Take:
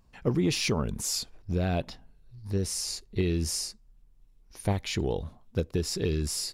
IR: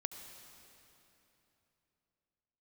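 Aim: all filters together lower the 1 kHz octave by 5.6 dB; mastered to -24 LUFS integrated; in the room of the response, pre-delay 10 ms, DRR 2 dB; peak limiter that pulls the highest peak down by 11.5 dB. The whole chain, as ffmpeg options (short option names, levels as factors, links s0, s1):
-filter_complex "[0:a]equalizer=f=1000:t=o:g=-8.5,alimiter=level_in=1.06:limit=0.0631:level=0:latency=1,volume=0.944,asplit=2[s0][s1];[1:a]atrim=start_sample=2205,adelay=10[s2];[s1][s2]afir=irnorm=-1:irlink=0,volume=0.944[s3];[s0][s3]amix=inputs=2:normalize=0,volume=2.66"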